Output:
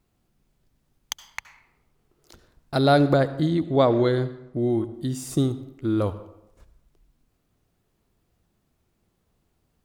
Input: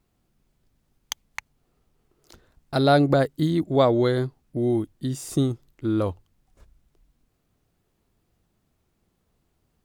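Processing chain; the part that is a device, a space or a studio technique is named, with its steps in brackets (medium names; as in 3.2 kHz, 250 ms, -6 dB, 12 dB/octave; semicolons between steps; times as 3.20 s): 3.17–4.94 s: distance through air 52 m; saturated reverb return (on a send at -12.5 dB: reverberation RT60 0.85 s, pre-delay 65 ms + saturation -13 dBFS, distortion -16 dB)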